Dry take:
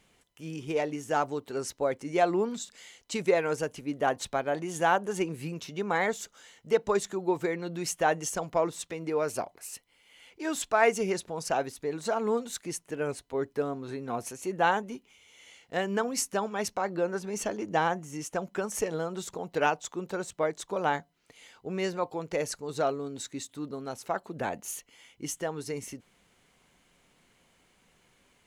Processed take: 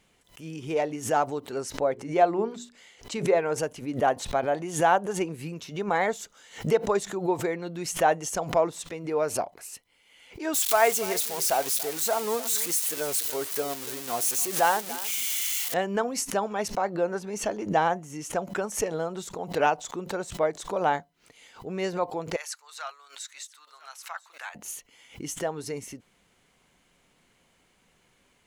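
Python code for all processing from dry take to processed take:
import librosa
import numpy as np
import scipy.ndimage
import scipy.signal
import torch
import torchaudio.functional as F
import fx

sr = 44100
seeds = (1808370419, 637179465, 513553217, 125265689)

y = fx.chain(x, sr, fx.high_shelf(hz=3500.0, db=-7.5),
    fx.hum_notches(base_hz=60, count=7), at=(1.73, 3.56))
y = fx.chain(y, sr, fx.crossing_spikes(level_db=-21.0),
    fx.peak_eq(hz=120.0, db=-8.0, octaves=2.9),
    fx.echo_single(ms=286, db=-15.5), at=(10.54, 15.74))
y = fx.chain(y, sr, fx.highpass(hz=1100.0, slope=24),
    fx.echo_single(ms=998, db=-22.0), at=(22.36, 24.55))
y = fx.dynamic_eq(y, sr, hz=700.0, q=1.6, threshold_db=-40.0, ratio=4.0, max_db=5)
y = fx.pre_swell(y, sr, db_per_s=150.0)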